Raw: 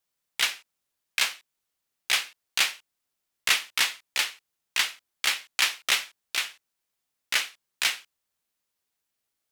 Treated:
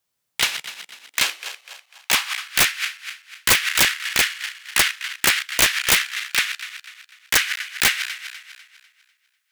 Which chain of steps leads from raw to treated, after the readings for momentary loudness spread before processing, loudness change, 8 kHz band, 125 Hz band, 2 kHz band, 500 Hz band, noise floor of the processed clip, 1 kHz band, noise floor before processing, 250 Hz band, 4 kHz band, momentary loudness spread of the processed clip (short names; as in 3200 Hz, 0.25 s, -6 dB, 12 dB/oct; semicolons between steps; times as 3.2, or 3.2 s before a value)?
12 LU, +7.0 dB, +9.0 dB, n/a, +7.5 dB, +12.5 dB, -72 dBFS, +8.0 dB, -82 dBFS, +17.5 dB, +5.5 dB, 18 LU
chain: regenerating reverse delay 0.124 s, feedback 63%, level -10.5 dB; high-pass sweep 73 Hz -> 1600 Hz, 0.04–2.62; wrapped overs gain 11.5 dB; gain +4.5 dB